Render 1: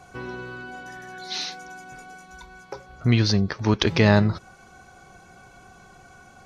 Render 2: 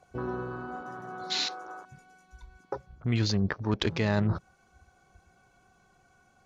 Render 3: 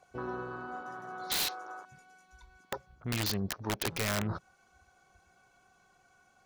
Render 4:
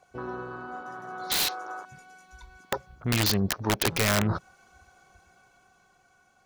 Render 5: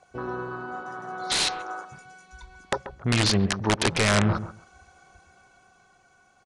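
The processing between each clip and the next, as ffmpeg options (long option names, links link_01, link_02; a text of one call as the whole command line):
ffmpeg -i in.wav -af "afwtdn=0.0178,areverse,acompressor=threshold=-26dB:ratio=6,areverse,volume=2dB" out.wav
ffmpeg -i in.wav -af "lowshelf=frequency=370:gain=-9,aeval=exprs='(mod(15.8*val(0)+1,2)-1)/15.8':channel_layout=same" out.wav
ffmpeg -i in.wav -af "dynaudnorm=framelen=220:gausssize=13:maxgain=6dB,volume=2dB" out.wav
ffmpeg -i in.wav -filter_complex "[0:a]acrossover=split=3300[link_01][link_02];[link_01]asplit=2[link_03][link_04];[link_04]adelay=135,lowpass=frequency=2600:poles=1,volume=-11.5dB,asplit=2[link_05][link_06];[link_06]adelay=135,lowpass=frequency=2600:poles=1,volume=0.17[link_07];[link_03][link_05][link_07]amix=inputs=3:normalize=0[link_08];[link_02]asoftclip=type=hard:threshold=-19dB[link_09];[link_08][link_09]amix=inputs=2:normalize=0,aresample=22050,aresample=44100,volume=3dB" out.wav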